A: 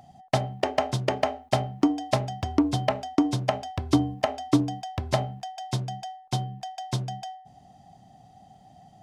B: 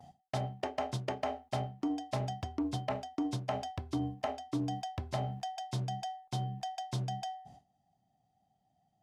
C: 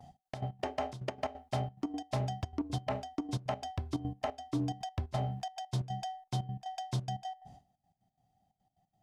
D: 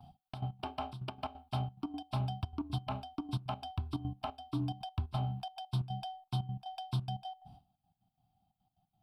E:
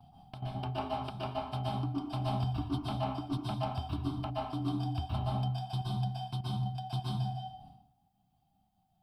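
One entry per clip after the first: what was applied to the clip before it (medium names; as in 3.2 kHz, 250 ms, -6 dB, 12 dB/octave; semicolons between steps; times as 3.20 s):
gate with hold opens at -41 dBFS; reverse; compression 6:1, threshold -30 dBFS, peak gain reduction 14.5 dB; reverse; trim -2 dB
bass shelf 68 Hz +11 dB; trance gate "xx.x.x.xx" 178 bpm -12 dB
static phaser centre 1.9 kHz, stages 6; trim +1 dB
plate-style reverb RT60 0.67 s, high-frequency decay 0.75×, pre-delay 110 ms, DRR -4.5 dB; trim -2 dB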